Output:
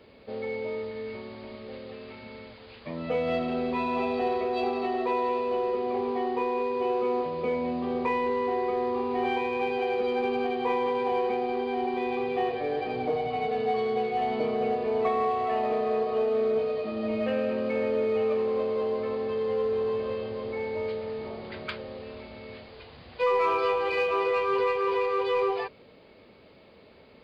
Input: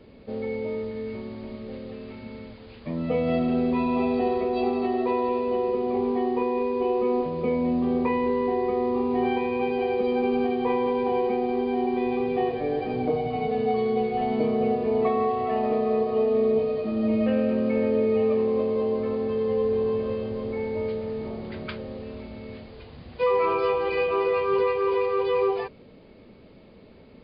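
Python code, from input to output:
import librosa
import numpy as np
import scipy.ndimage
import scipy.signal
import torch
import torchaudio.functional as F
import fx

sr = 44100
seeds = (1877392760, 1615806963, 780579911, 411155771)

p1 = fx.highpass(x, sr, hz=160.0, slope=6)
p2 = fx.peak_eq(p1, sr, hz=220.0, db=-8.5, octaves=2.0)
p3 = np.clip(10.0 ** (29.0 / 20.0) * p2, -1.0, 1.0) / 10.0 ** (29.0 / 20.0)
y = p2 + (p3 * librosa.db_to_amplitude(-10.5))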